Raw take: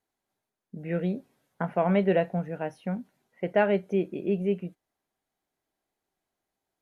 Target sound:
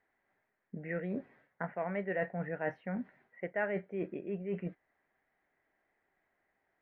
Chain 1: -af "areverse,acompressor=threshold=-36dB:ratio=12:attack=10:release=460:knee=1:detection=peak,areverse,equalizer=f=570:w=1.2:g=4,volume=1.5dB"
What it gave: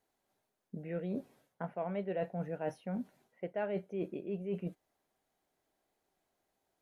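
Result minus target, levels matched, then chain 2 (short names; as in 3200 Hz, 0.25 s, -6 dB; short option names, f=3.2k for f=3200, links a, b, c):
2000 Hz band -9.5 dB
-af "areverse,acompressor=threshold=-36dB:ratio=12:attack=10:release=460:knee=1:detection=peak,areverse,lowpass=f=1.9k:t=q:w=5.3,equalizer=f=570:w=1.2:g=4,volume=1.5dB"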